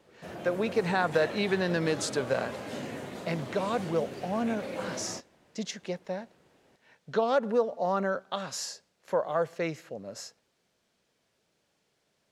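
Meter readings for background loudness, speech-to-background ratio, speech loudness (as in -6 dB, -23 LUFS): -39.5 LUFS, 8.5 dB, -31.0 LUFS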